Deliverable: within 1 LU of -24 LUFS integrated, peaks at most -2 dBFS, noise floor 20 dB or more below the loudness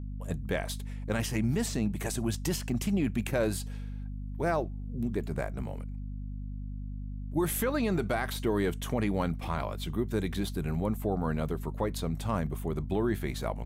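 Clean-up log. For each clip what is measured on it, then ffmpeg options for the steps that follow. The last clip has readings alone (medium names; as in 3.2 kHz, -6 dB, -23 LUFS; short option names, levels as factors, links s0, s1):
hum 50 Hz; highest harmonic 250 Hz; hum level -35 dBFS; loudness -32.5 LUFS; peak level -18.0 dBFS; loudness target -24.0 LUFS
-> -af "bandreject=f=50:t=h:w=6,bandreject=f=100:t=h:w=6,bandreject=f=150:t=h:w=6,bandreject=f=200:t=h:w=6,bandreject=f=250:t=h:w=6"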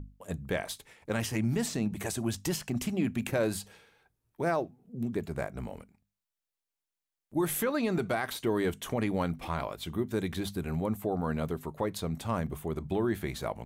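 hum not found; loudness -32.5 LUFS; peak level -17.5 dBFS; loudness target -24.0 LUFS
-> -af "volume=2.66"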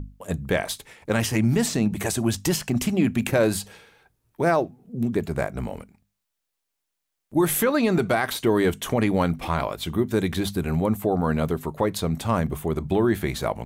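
loudness -24.0 LUFS; peak level -9.0 dBFS; noise floor -81 dBFS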